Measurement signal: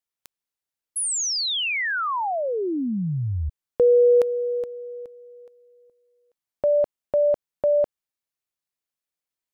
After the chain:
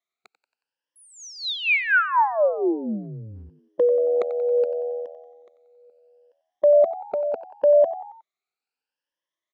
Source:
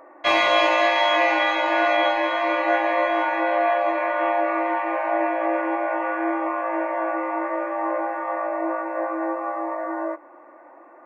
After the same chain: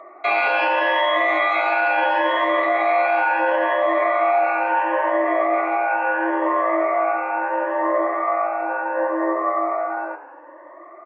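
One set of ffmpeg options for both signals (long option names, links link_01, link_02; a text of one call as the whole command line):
ffmpeg -i in.wav -filter_complex "[0:a]afftfilt=real='re*pow(10,16/40*sin(2*PI*(1.2*log(max(b,1)*sr/1024/100)/log(2)-(0.73)*(pts-256)/sr)))':imag='im*pow(10,16/40*sin(2*PI*(1.2*log(max(b,1)*sr/1024/100)/log(2)-(0.73)*(pts-256)/sr)))':win_size=1024:overlap=0.75,acrossover=split=3100[link_01][link_02];[link_02]acompressor=threshold=-39dB:ratio=4:attack=1:release=60[link_03];[link_01][link_03]amix=inputs=2:normalize=0,alimiter=limit=-12.5dB:level=0:latency=1:release=29,highpass=340,lowpass=4000,asplit=5[link_04][link_05][link_06][link_07][link_08];[link_05]adelay=91,afreqshift=80,volume=-14.5dB[link_09];[link_06]adelay=182,afreqshift=160,volume=-20.9dB[link_10];[link_07]adelay=273,afreqshift=240,volume=-27.3dB[link_11];[link_08]adelay=364,afreqshift=320,volume=-33.6dB[link_12];[link_04][link_09][link_10][link_11][link_12]amix=inputs=5:normalize=0,volume=2dB" out.wav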